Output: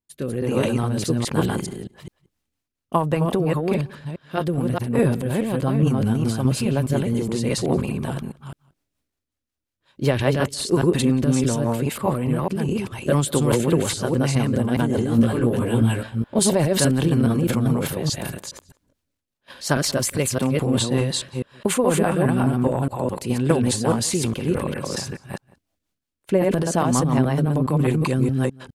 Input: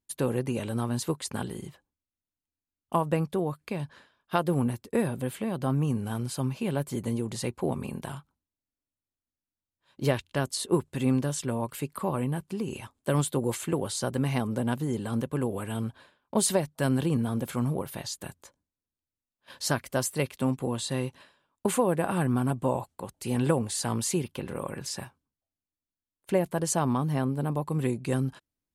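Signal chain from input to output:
delay that plays each chunk backwards 208 ms, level −0.5 dB
high-shelf EQ 6,700 Hz −5 dB
transient designer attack +2 dB, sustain +8 dB
automatic gain control gain up to 6.5 dB
rotating-speaker cabinet horn 1.2 Hz, later 5.5 Hz, at 0:01.75
0:15.06–0:16.39: double-tracking delay 17 ms −2.5 dB
slap from a distant wall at 31 metres, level −23 dB

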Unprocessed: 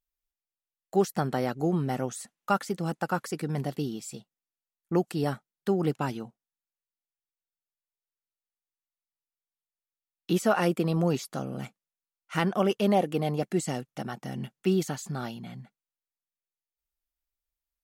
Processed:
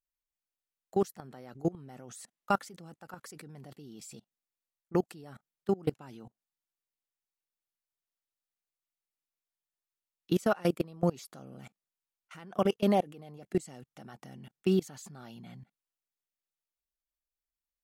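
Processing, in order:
output level in coarse steps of 24 dB

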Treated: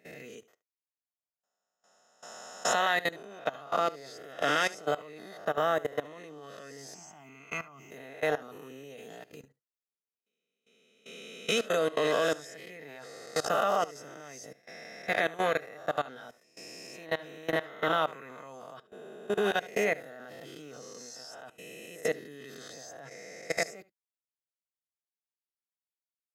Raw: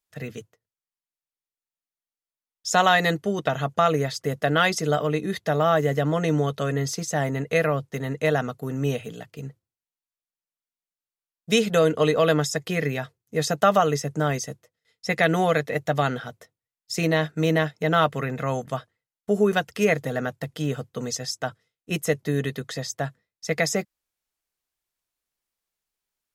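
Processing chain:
peak hold with a rise ahead of every peak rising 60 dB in 1.19 s
high-pass filter 260 Hz 12 dB per octave
output level in coarse steps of 20 dB
0:06.94–0:07.91: phaser with its sweep stopped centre 2,600 Hz, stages 8
on a send: single-tap delay 73 ms −20 dB
on the sum: level −6.5 dB

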